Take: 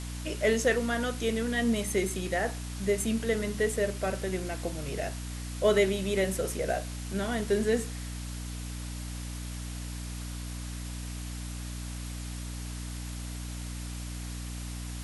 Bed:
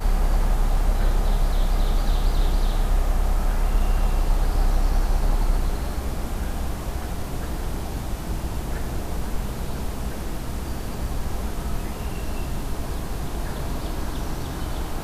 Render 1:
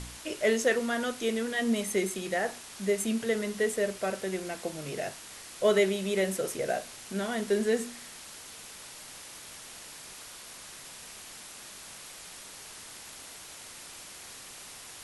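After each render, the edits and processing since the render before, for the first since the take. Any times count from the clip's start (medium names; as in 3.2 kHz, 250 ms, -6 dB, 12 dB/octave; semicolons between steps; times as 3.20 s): de-hum 60 Hz, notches 5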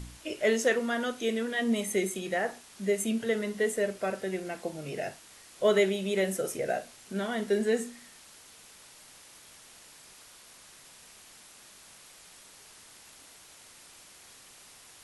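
noise print and reduce 7 dB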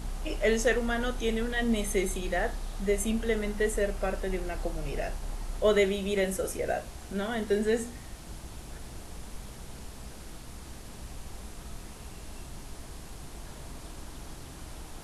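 add bed -15.5 dB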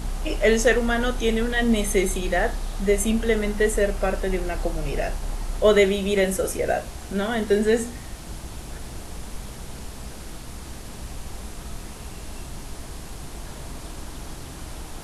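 trim +7 dB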